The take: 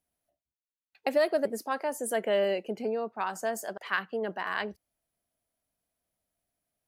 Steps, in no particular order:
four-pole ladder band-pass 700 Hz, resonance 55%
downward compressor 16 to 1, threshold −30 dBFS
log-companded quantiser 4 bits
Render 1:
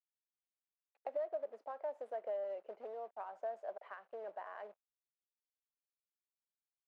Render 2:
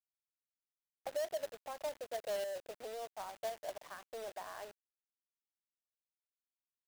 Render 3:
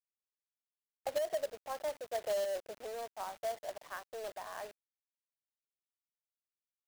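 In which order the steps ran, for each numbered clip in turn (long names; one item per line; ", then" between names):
log-companded quantiser, then downward compressor, then four-pole ladder band-pass
downward compressor, then four-pole ladder band-pass, then log-companded quantiser
four-pole ladder band-pass, then log-companded quantiser, then downward compressor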